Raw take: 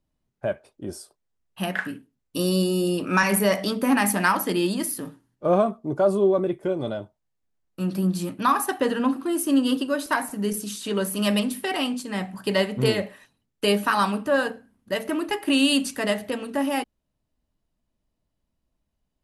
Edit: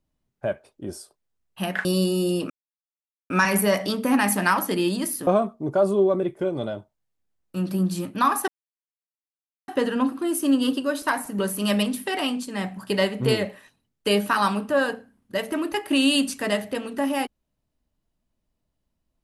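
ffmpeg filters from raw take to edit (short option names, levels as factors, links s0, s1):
-filter_complex "[0:a]asplit=6[s0][s1][s2][s3][s4][s5];[s0]atrim=end=1.852[s6];[s1]atrim=start=2.428:end=3.08,asetpts=PTS-STARTPTS,afade=t=out:st=0.648:d=0.004:c=hsin,apad=pad_dur=0.8[s7];[s2]atrim=start=3.08:end=5.052,asetpts=PTS-STARTPTS,afade=t=in:d=0.004:c=hsin[s8];[s3]atrim=start=5.508:end=8.72,asetpts=PTS-STARTPTS,afade=t=out:st=3.208:d=0.004:c=hsin,apad=pad_dur=1.2[s9];[s4]atrim=start=8.72:end=10.432,asetpts=PTS-STARTPTS,afade=t=in:d=0.004:c=hsin[s10];[s5]atrim=start=10.958[s11];[s7][s8]concat=n=2:v=0:a=1[s12];[s6][s12]acrossfade=d=0.004:c1=hsin:c2=hsin[s13];[s9][s10]concat=n=2:v=0:a=1[s14];[s13][s14]acrossfade=d=0.004:c1=hsin:c2=hsin[s15];[s15][s11]acrossfade=d=0.004:c1=hsin:c2=hsin"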